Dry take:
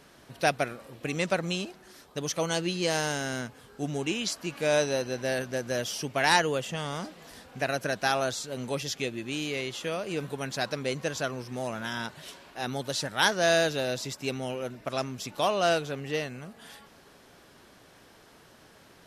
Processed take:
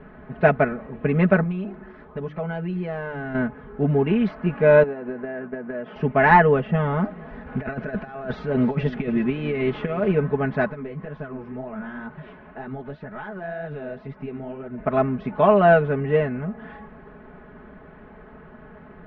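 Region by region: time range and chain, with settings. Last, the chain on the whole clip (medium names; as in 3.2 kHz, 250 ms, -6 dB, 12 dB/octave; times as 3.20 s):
1.43–3.35 s: hum notches 50/100/150/200/250/300/350/400 Hz + compression 2:1, threshold -44 dBFS
4.83–5.96 s: expander -36 dBFS + band-pass 200–2500 Hz + compression 16:1, threshold -36 dBFS
7.46–10.14 s: compressor with a negative ratio -34 dBFS, ratio -0.5 + treble shelf 5.4 kHz +11 dB + delay 298 ms -16 dB
10.67–14.78 s: compression 5:1, threshold -37 dBFS + flange 2 Hz, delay 5 ms, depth 9.5 ms, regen +36%
whole clip: inverse Chebyshev low-pass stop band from 7.8 kHz, stop band 70 dB; bass shelf 190 Hz +11 dB; comb 4.7 ms, depth 87%; trim +6.5 dB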